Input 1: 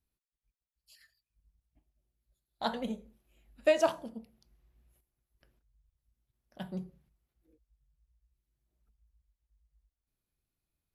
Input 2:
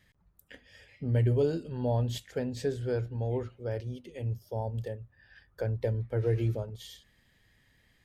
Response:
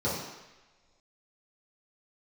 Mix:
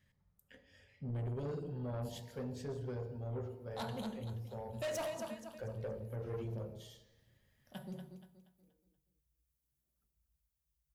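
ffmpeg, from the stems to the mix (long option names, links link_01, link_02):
-filter_complex "[0:a]highpass=76,aemphasis=mode=production:type=50kf,adelay=1150,volume=-6dB,asplit=3[link_01][link_02][link_03];[link_02]volume=-18.5dB[link_04];[link_03]volume=-10dB[link_05];[1:a]volume=-9.5dB,asplit=2[link_06][link_07];[link_07]volume=-15.5dB[link_08];[2:a]atrim=start_sample=2205[link_09];[link_04][link_08]amix=inputs=2:normalize=0[link_10];[link_10][link_09]afir=irnorm=-1:irlink=0[link_11];[link_05]aecho=0:1:238|476|714|952|1190:1|0.38|0.144|0.0549|0.0209[link_12];[link_01][link_06][link_11][link_12]amix=inputs=4:normalize=0,asoftclip=type=tanh:threshold=-35dB"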